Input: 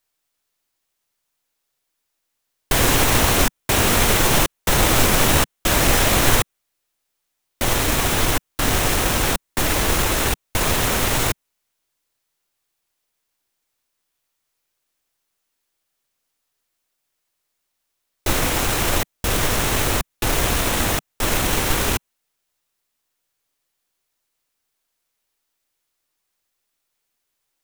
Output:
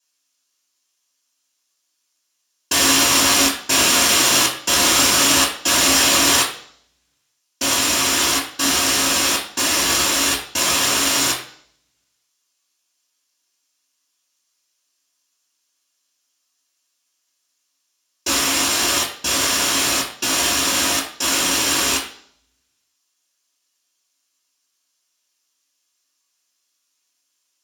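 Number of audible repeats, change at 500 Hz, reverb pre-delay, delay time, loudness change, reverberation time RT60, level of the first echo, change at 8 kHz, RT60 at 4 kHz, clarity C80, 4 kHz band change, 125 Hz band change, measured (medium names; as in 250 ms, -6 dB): no echo, -3.0 dB, 3 ms, no echo, +3.0 dB, 0.55 s, no echo, +6.5 dB, 0.60 s, 10.0 dB, +7.0 dB, -13.0 dB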